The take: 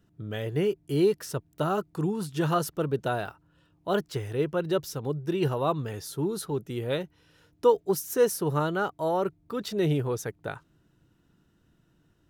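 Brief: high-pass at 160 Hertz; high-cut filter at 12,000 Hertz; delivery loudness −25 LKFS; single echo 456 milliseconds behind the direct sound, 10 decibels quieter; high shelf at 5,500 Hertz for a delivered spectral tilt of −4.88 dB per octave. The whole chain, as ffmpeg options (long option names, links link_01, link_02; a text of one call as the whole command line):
ffmpeg -i in.wav -af "highpass=160,lowpass=12000,highshelf=frequency=5500:gain=6,aecho=1:1:456:0.316,volume=3.5dB" out.wav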